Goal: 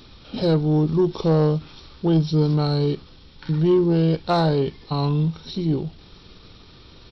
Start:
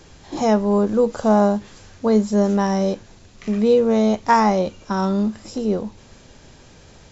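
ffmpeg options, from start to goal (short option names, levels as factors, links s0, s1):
-af "superequalizer=9b=0.501:12b=0.631:14b=2,asetrate=33038,aresample=44100,atempo=1.33484,asoftclip=type=tanh:threshold=0.299"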